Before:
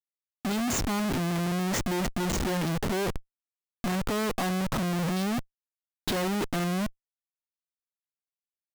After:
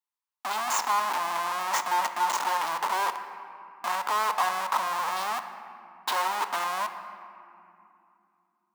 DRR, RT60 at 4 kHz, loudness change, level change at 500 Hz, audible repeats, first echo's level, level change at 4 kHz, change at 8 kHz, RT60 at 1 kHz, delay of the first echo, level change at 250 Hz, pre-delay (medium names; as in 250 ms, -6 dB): 8.0 dB, 1.4 s, +1.0 dB, -6.0 dB, no echo, no echo, +1.0 dB, +0.5 dB, 2.7 s, no echo, -22.5 dB, 3 ms